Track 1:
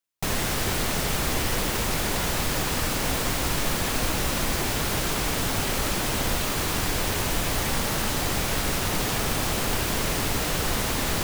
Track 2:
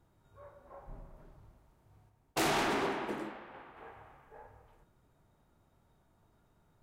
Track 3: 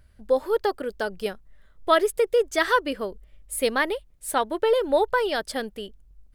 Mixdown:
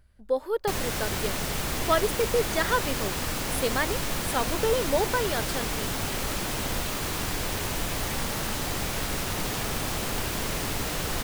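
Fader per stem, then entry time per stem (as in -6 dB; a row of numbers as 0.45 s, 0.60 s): -4.0 dB, -13.0 dB, -4.5 dB; 0.45 s, 0.00 s, 0.00 s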